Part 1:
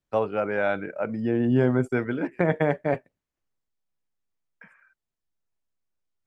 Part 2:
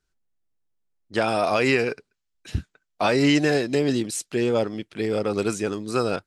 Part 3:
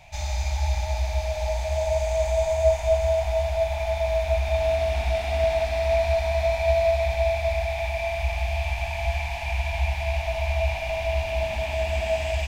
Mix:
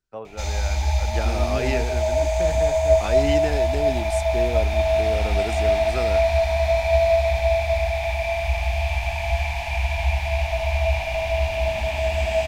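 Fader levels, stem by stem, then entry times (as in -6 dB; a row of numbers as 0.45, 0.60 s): -11.0, -7.5, +3.0 dB; 0.00, 0.00, 0.25 s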